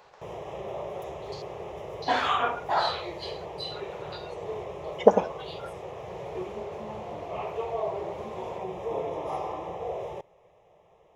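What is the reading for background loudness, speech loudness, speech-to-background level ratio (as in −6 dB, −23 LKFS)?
−36.5 LKFS, −27.0 LKFS, 9.5 dB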